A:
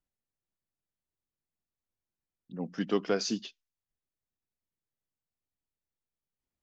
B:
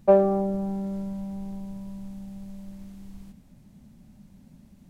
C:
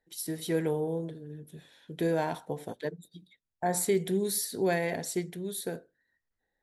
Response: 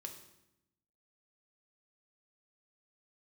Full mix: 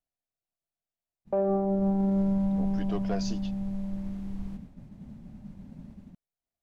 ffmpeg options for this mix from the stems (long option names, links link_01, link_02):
-filter_complex "[0:a]equalizer=frequency=680:width=4.6:gain=14,asoftclip=type=tanh:threshold=-18.5dB,volume=-6dB[link_01];[1:a]agate=range=-33dB:threshold=-49dB:ratio=3:detection=peak,lowpass=frequency=1600:poles=1,dynaudnorm=framelen=130:gausssize=3:maxgain=4.5dB,adelay=1250,volume=3dB[link_02];[link_01][link_02]amix=inputs=2:normalize=0,alimiter=limit=-19.5dB:level=0:latency=1"